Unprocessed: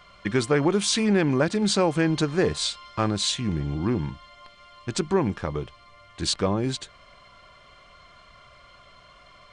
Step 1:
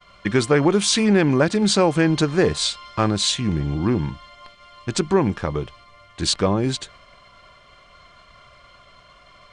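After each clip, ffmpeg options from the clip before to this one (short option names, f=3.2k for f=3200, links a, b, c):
-af "agate=range=-33dB:threshold=-48dB:ratio=3:detection=peak,volume=4.5dB"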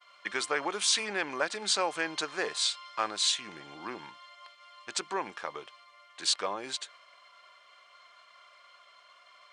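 -af "highpass=790,volume=-6dB"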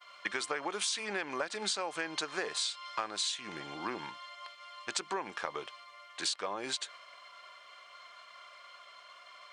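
-af "acompressor=threshold=-35dB:ratio=10,volume=4dB"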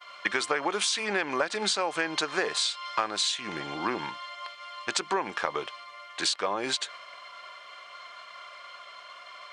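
-af "highshelf=f=6.7k:g=-6,volume=8dB"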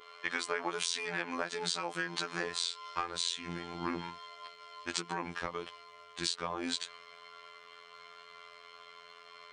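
-af "aeval=exprs='val(0)+0.00501*sin(2*PI*460*n/s)':c=same,asubboost=boost=4.5:cutoff=240,afftfilt=real='hypot(re,im)*cos(PI*b)':imag='0':win_size=2048:overlap=0.75,volume=-3.5dB"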